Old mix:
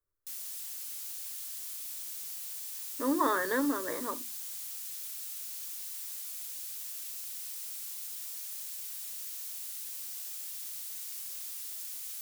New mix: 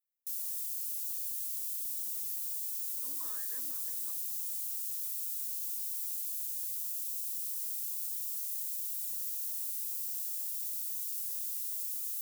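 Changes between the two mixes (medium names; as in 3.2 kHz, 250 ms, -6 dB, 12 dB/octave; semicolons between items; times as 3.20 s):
speech -11.5 dB; master: add pre-emphasis filter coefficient 0.9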